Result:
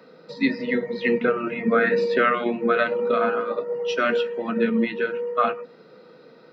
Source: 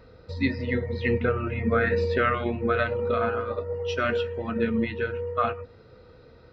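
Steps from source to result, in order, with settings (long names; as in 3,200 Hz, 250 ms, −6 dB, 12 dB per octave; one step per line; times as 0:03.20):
Butterworth high-pass 150 Hz 72 dB per octave
level +4 dB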